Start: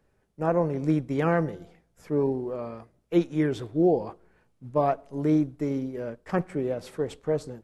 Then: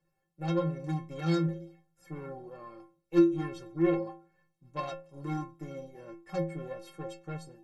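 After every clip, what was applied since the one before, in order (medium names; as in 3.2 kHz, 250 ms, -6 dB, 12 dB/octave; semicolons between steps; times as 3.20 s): Chebyshev shaper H 6 -14 dB, 8 -15 dB, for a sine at -10.5 dBFS; inharmonic resonator 160 Hz, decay 0.51 s, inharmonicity 0.03; trim +6.5 dB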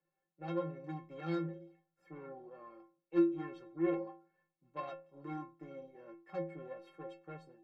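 three-band isolator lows -17 dB, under 180 Hz, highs -19 dB, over 3.4 kHz; trim -6 dB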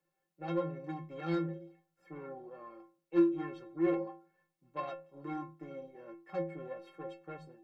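de-hum 78 Hz, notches 2; in parallel at -12 dB: hard clipper -32 dBFS, distortion -8 dB; on the sum: trim +1.5 dB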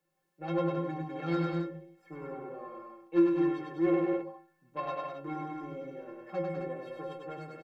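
loudspeakers at several distances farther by 34 m -3 dB, 69 m -5 dB, 91 m -8 dB; trim +2 dB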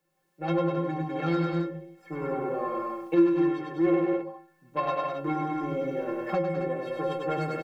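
recorder AGC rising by 8.3 dB/s; trim +3.5 dB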